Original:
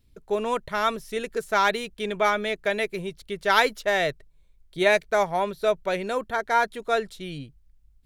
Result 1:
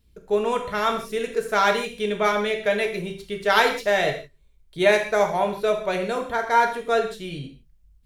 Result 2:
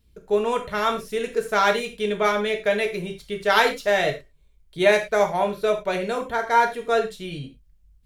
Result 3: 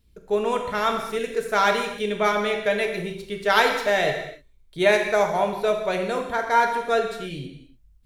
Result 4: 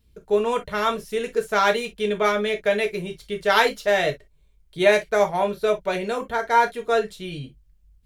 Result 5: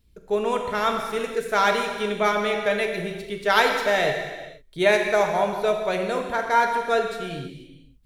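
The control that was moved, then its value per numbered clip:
reverb whose tail is shaped and stops, gate: 190, 130, 330, 80, 530 milliseconds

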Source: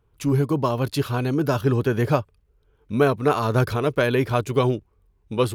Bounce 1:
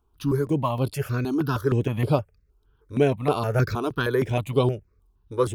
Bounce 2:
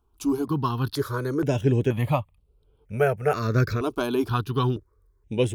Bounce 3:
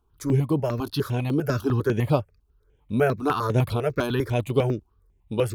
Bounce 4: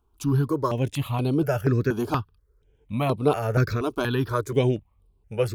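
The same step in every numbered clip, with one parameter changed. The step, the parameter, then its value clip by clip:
step-sequenced phaser, speed: 6.4, 2.1, 10, 4.2 Hertz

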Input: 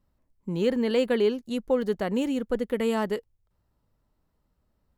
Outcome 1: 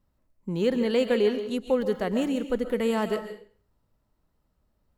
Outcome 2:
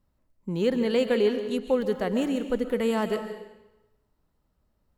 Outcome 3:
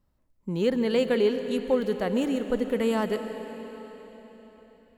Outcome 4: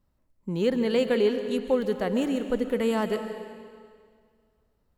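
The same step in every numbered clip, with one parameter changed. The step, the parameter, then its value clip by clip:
comb and all-pass reverb, RT60: 0.47, 0.98, 4.4, 2 seconds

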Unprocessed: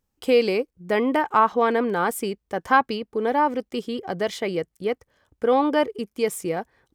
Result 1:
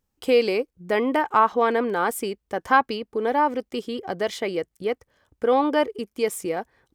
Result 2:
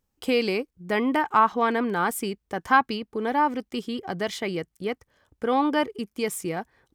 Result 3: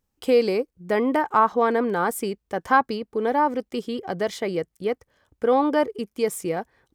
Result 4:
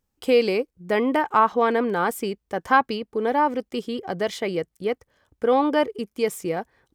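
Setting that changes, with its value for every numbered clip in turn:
dynamic equaliser, frequency: 160, 520, 2,800, 9,800 Hertz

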